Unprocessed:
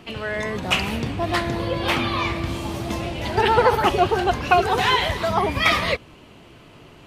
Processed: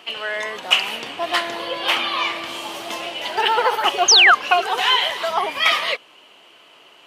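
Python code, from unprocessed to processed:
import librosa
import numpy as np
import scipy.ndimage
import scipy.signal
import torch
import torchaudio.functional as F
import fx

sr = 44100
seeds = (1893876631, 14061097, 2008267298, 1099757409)

p1 = scipy.signal.sosfilt(scipy.signal.butter(2, 610.0, 'highpass', fs=sr, output='sos'), x)
p2 = fx.peak_eq(p1, sr, hz=3000.0, db=8.0, octaves=0.23)
p3 = fx.rider(p2, sr, range_db=3, speed_s=0.5)
p4 = p2 + (p3 * 10.0 ** (-2.0 / 20.0))
p5 = fx.quant_companded(p4, sr, bits=8, at=(2.57, 4.16))
p6 = fx.spec_paint(p5, sr, seeds[0], shape='fall', start_s=4.08, length_s=0.27, low_hz=1100.0, high_hz=6800.0, level_db=-7.0)
y = p6 * 10.0 ** (-3.5 / 20.0)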